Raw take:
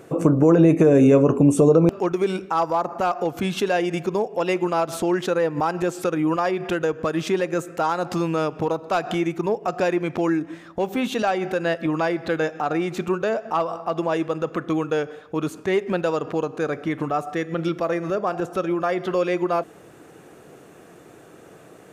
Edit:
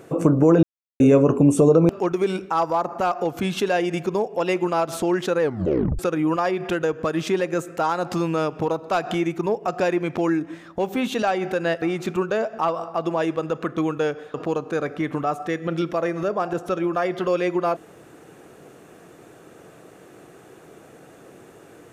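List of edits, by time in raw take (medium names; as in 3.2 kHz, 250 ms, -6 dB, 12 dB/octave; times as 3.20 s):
0.63–1.00 s: mute
5.41 s: tape stop 0.58 s
11.82–12.74 s: delete
15.26–16.21 s: delete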